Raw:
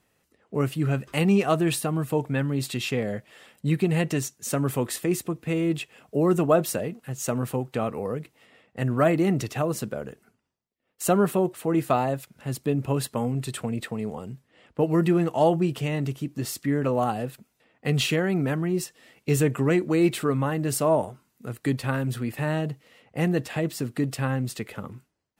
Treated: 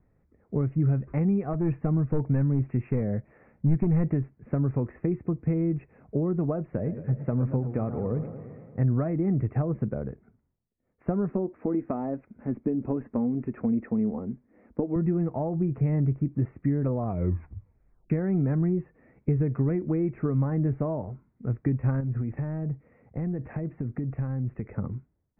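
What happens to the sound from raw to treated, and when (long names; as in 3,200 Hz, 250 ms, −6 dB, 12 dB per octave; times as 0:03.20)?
0:01.53–0:04.14: hard clipping −19.5 dBFS
0:06.66–0:08.86: feedback echo with a swinging delay time 113 ms, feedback 69%, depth 143 cents, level −13 dB
0:11.30–0:14.96: low shelf with overshoot 180 Hz −7 dB, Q 3
0:16.98: tape stop 1.12 s
0:22.00–0:24.75: downward compressor, threshold −31 dBFS
whole clip: downward compressor 12 to 1, threshold −25 dBFS; Butterworth low-pass 2,400 Hz 96 dB per octave; spectral tilt −4.5 dB per octave; level −5.5 dB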